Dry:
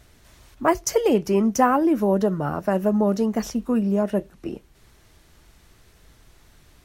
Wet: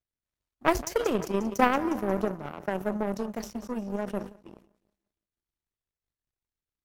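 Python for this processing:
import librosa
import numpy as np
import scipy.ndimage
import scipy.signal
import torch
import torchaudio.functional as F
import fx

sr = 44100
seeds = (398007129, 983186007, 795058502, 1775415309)

y = fx.echo_feedback(x, sr, ms=179, feedback_pct=59, wet_db=-14.0)
y = fx.power_curve(y, sr, exponent=2.0)
y = fx.sustainer(y, sr, db_per_s=130.0)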